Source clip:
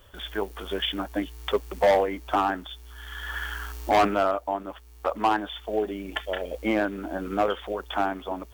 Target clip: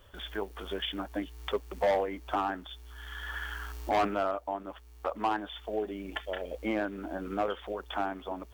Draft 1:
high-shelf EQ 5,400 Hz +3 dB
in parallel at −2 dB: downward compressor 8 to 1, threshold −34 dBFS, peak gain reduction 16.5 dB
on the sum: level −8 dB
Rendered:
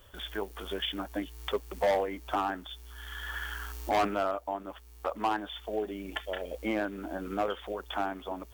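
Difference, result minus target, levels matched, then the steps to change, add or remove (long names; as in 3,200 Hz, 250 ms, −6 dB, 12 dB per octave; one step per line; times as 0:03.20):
8,000 Hz band +4.5 dB
change: high-shelf EQ 5,400 Hz −4.5 dB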